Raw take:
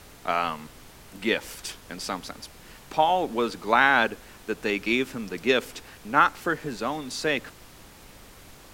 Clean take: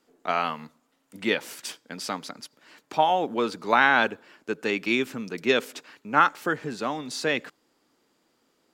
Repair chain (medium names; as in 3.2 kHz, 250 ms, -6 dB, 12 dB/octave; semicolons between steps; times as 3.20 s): noise reduction 21 dB, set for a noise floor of -49 dBFS